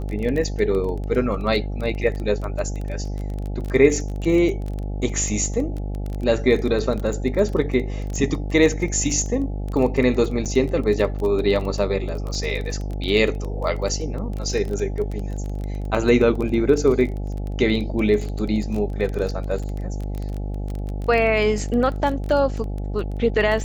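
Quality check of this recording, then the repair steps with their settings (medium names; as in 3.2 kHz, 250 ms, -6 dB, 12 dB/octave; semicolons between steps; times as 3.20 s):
buzz 50 Hz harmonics 17 -27 dBFS
crackle 20 per s -26 dBFS
10.45–10.46 s: dropout 6.7 ms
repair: de-click; de-hum 50 Hz, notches 17; interpolate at 10.45 s, 6.7 ms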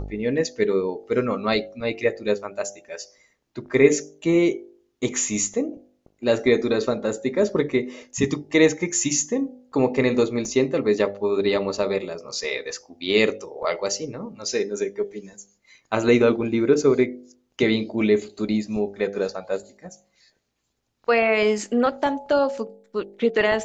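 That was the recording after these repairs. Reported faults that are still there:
nothing left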